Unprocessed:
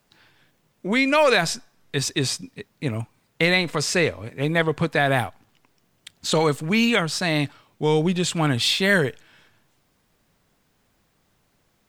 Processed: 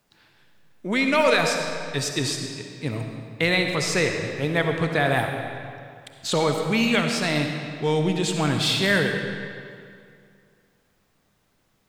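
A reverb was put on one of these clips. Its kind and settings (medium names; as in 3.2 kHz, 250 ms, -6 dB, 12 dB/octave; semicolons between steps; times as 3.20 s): algorithmic reverb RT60 2.3 s, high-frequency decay 0.8×, pre-delay 25 ms, DRR 3.5 dB; trim -2.5 dB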